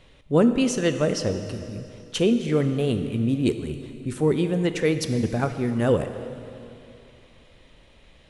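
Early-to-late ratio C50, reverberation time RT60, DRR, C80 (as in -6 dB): 9.0 dB, 2.8 s, 8.5 dB, 10.0 dB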